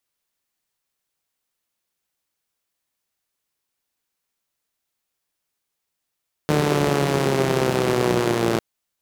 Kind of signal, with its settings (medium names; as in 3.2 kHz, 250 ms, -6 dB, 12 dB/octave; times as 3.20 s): four-cylinder engine model, changing speed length 2.10 s, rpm 4500, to 3400, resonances 180/350 Hz